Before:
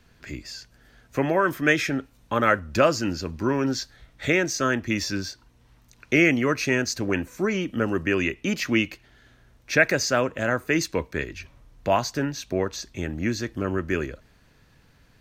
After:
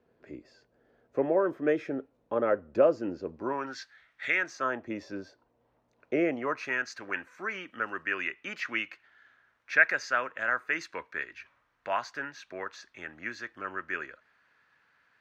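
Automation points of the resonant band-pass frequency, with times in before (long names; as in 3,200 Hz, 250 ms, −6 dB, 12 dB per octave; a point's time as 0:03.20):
resonant band-pass, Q 1.8
0:03.35 480 Hz
0:03.79 1,800 Hz
0:04.31 1,800 Hz
0:04.90 570 Hz
0:06.25 570 Hz
0:06.79 1,500 Hz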